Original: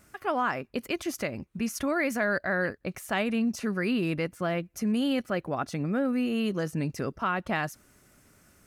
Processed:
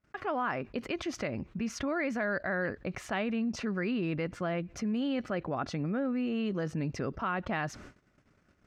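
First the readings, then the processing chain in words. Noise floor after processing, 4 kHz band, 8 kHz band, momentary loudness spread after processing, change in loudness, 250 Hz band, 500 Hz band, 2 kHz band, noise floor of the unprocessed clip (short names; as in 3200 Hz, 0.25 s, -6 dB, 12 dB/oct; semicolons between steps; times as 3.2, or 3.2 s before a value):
-69 dBFS, -5.5 dB, -6.5 dB, 5 LU, -4.0 dB, -3.5 dB, -3.5 dB, -4.5 dB, -64 dBFS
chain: gate -54 dBFS, range -58 dB; air absorption 170 m; fast leveller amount 50%; gain -5 dB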